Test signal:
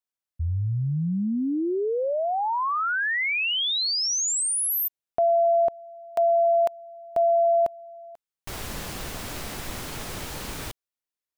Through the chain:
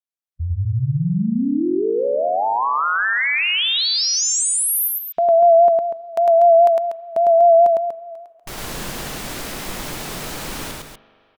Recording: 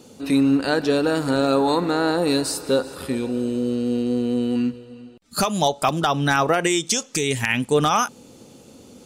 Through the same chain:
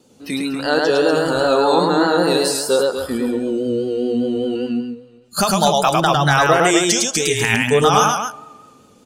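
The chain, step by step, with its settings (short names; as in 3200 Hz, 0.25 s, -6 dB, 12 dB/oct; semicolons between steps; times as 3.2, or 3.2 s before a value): spring tank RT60 2.7 s, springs 41 ms, chirp 70 ms, DRR 17.5 dB; spectral noise reduction 11 dB; loudspeakers at several distances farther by 36 m -2 dB, 83 m -8 dB; vibrato 5 Hz 44 cents; gain +3.5 dB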